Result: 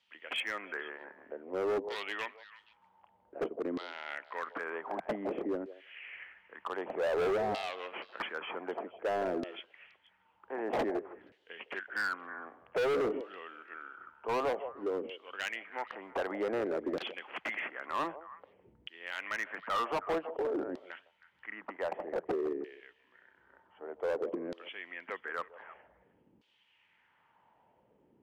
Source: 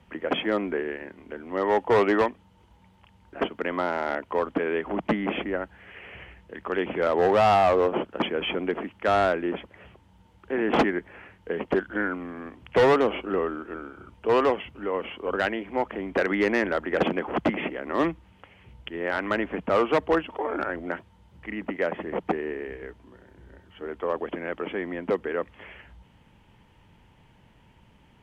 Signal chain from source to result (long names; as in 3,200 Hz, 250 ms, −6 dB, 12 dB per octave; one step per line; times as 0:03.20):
auto-filter band-pass saw down 0.53 Hz 280–4,300 Hz
echo through a band-pass that steps 158 ms, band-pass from 570 Hz, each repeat 1.4 octaves, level −12 dB
hard clipping −28 dBFS, distortion −6 dB